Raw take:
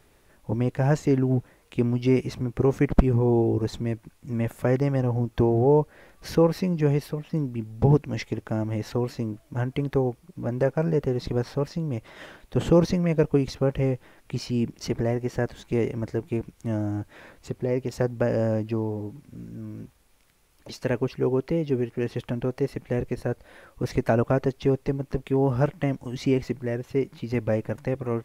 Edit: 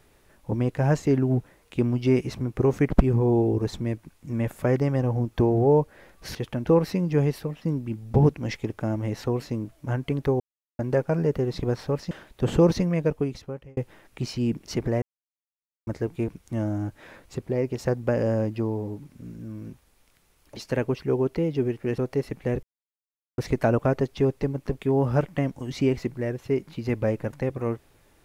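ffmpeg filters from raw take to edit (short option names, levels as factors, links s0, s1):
-filter_complex "[0:a]asplit=12[s0][s1][s2][s3][s4][s5][s6][s7][s8][s9][s10][s11];[s0]atrim=end=6.352[s12];[s1]atrim=start=22.108:end=22.432[s13];[s2]atrim=start=6.348:end=10.08,asetpts=PTS-STARTPTS,afade=t=out:st=3.728:d=0.004:c=hsin[s14];[s3]atrim=start=10.08:end=10.47,asetpts=PTS-STARTPTS,volume=0[s15];[s4]atrim=start=10.47:end=11.792,asetpts=PTS-STARTPTS,afade=t=in:d=0.004:c=hsin[s16];[s5]atrim=start=12.238:end=13.9,asetpts=PTS-STARTPTS,afade=t=out:st=0.712:d=0.95[s17];[s6]atrim=start=13.9:end=15.15,asetpts=PTS-STARTPTS,afade=t=in:d=0.004:c=hsin,afade=t=out:st=1.246:d=0.004:c=hsin[s18];[s7]atrim=start=15.15:end=16,asetpts=PTS-STARTPTS,volume=0[s19];[s8]atrim=start=16:end=22.112,asetpts=PTS-STARTPTS,afade=t=in:d=0.004:c=hsin[s20];[s9]atrim=start=22.428:end=23.08,asetpts=PTS-STARTPTS,afade=t=out:st=0.648:d=0.004:c=hsin[s21];[s10]atrim=start=23.08:end=23.83,asetpts=PTS-STARTPTS,volume=0[s22];[s11]atrim=start=23.83,asetpts=PTS-STARTPTS,afade=t=in:d=0.004:c=hsin[s23];[s12][s13]acrossfade=d=0.004:c1=hsin:c2=hsin[s24];[s14][s15][s16]concat=n=3:v=0:a=1[s25];[s24][s25]acrossfade=d=0.004:c1=hsin:c2=hsin[s26];[s17][s18][s19][s20]concat=n=4:v=0:a=1[s27];[s26][s27]acrossfade=d=0.004:c1=hsin:c2=hsin[s28];[s21][s22][s23]concat=n=3:v=0:a=1[s29];[s28][s29]acrossfade=d=0.004:c1=hsin:c2=hsin"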